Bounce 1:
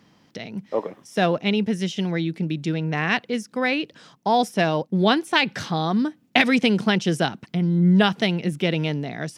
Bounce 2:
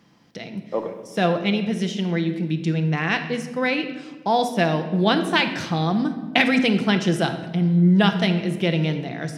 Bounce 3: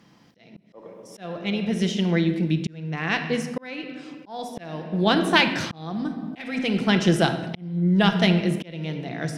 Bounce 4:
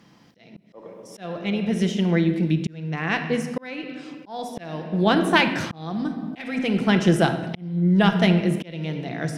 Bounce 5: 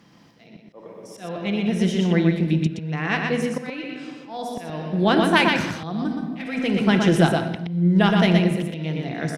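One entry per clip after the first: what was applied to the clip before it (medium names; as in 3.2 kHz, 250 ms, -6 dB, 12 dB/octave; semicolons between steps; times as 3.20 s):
simulated room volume 1000 m³, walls mixed, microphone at 0.78 m; trim -1 dB
Chebyshev shaper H 4 -28 dB, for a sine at -1.5 dBFS; slow attack 696 ms; trim +1.5 dB
dynamic bell 4.3 kHz, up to -6 dB, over -42 dBFS, Q 0.98; trim +1.5 dB
delay 121 ms -4 dB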